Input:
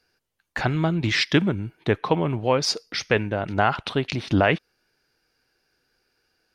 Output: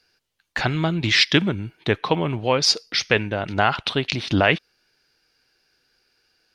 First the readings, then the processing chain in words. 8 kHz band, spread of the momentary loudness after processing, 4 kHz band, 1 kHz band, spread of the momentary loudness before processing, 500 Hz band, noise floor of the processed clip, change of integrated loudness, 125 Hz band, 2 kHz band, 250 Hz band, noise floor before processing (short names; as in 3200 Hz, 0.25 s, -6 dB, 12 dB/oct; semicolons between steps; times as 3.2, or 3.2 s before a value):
+5.0 dB, 8 LU, +7.0 dB, +1.0 dB, 7 LU, +0.5 dB, -74 dBFS, +2.5 dB, 0.0 dB, +4.0 dB, 0.0 dB, -77 dBFS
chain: bell 3800 Hz +7.5 dB 1.9 oct